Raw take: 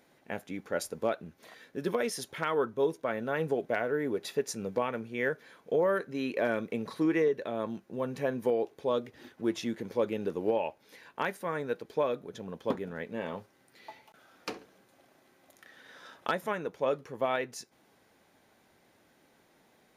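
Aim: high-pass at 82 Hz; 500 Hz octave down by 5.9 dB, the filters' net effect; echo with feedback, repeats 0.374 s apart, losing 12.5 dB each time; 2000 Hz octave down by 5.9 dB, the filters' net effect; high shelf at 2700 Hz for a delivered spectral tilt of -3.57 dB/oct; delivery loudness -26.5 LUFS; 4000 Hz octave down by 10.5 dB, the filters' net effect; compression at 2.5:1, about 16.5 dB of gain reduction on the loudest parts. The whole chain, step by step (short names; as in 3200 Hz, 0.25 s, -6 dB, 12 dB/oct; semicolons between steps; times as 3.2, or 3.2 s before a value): HPF 82 Hz; bell 500 Hz -6.5 dB; bell 2000 Hz -3 dB; high shelf 2700 Hz -9 dB; bell 4000 Hz -5 dB; compressor 2.5:1, threshold -53 dBFS; feedback echo 0.374 s, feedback 24%, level -12.5 dB; gain +25 dB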